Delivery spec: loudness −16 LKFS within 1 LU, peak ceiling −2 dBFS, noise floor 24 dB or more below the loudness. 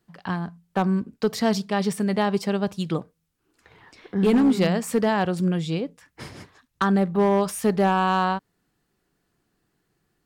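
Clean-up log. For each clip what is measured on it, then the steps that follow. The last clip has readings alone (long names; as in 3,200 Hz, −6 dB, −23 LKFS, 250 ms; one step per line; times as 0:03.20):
share of clipped samples 0.8%; peaks flattened at −13.5 dBFS; integrated loudness −23.5 LKFS; sample peak −13.5 dBFS; target loudness −16.0 LKFS
→ clipped peaks rebuilt −13.5 dBFS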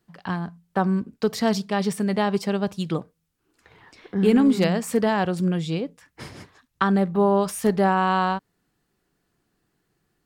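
share of clipped samples 0.0%; integrated loudness −23.0 LKFS; sample peak −7.0 dBFS; target loudness −16.0 LKFS
→ level +7 dB
brickwall limiter −2 dBFS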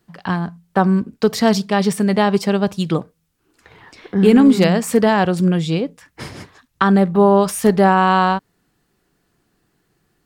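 integrated loudness −16.0 LKFS; sample peak −2.0 dBFS; background noise floor −67 dBFS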